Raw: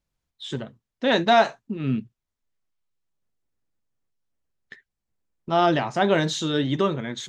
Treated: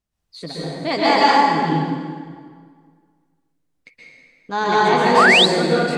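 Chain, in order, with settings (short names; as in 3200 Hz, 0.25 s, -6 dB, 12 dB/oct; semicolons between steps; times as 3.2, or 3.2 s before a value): varispeed +22%; plate-style reverb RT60 1.9 s, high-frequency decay 0.75×, pre-delay 0.11 s, DRR -8 dB; painted sound rise, 5.17–5.46, 990–4200 Hz -10 dBFS; gain -2.5 dB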